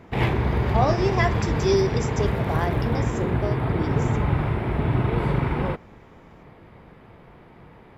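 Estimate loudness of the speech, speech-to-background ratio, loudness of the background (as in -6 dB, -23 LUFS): -27.5 LUFS, -3.0 dB, -24.5 LUFS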